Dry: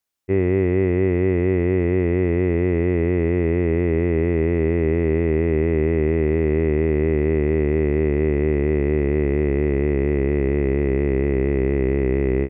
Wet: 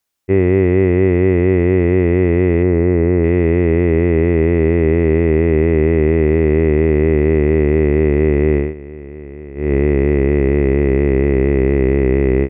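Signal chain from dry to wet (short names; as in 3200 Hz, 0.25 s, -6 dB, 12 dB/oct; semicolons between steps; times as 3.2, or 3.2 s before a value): 2.63–3.24 LPF 1800 Hz 12 dB/oct; 8.56–9.73 dip -18 dB, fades 0.18 s; gain +6 dB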